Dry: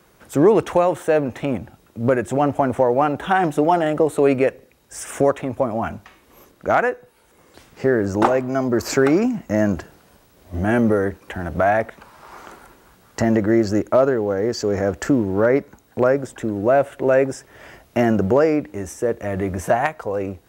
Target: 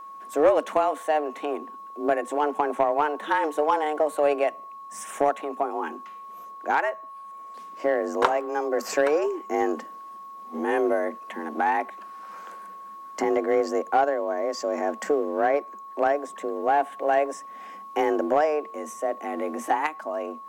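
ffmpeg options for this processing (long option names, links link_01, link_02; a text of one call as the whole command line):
ffmpeg -i in.wav -af "afreqshift=150,aeval=exprs='val(0)+0.0251*sin(2*PI*1100*n/s)':channel_layout=same,aeval=exprs='0.841*(cos(1*acos(clip(val(0)/0.841,-1,1)))-cos(1*PI/2))+0.211*(cos(3*acos(clip(val(0)/0.841,-1,1)))-cos(3*PI/2))+0.0376*(cos(5*acos(clip(val(0)/0.841,-1,1)))-cos(5*PI/2))':channel_layout=same" out.wav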